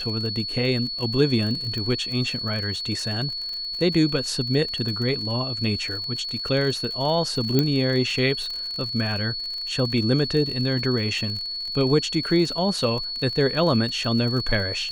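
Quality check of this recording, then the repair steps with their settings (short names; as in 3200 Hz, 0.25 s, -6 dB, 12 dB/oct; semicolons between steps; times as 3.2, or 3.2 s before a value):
crackle 47/s -30 dBFS
tone 4400 Hz -28 dBFS
1.78 pop -19 dBFS
7.59 pop -7 dBFS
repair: de-click; notch 4400 Hz, Q 30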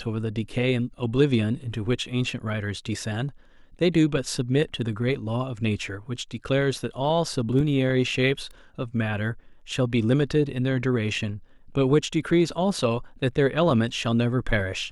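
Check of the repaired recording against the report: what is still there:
7.59 pop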